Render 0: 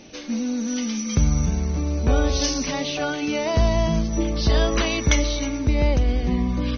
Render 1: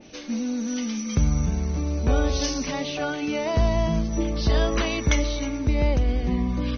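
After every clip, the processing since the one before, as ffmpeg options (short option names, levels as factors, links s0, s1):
-af "adynamicequalizer=threshold=0.01:dfrequency=3000:dqfactor=0.7:tfrequency=3000:tqfactor=0.7:attack=5:release=100:ratio=0.375:range=2:mode=cutabove:tftype=highshelf,volume=0.794"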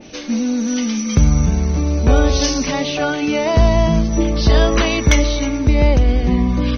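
-af "volume=3.98,asoftclip=hard,volume=0.251,volume=2.66"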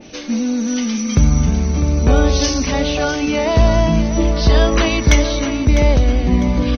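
-af "aecho=1:1:652|1304|1956|2608:0.282|0.104|0.0386|0.0143"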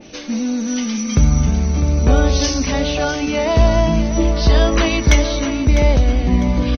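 -filter_complex "[0:a]asplit=2[s0][s1];[s1]adelay=15,volume=0.211[s2];[s0][s2]amix=inputs=2:normalize=0,volume=0.891"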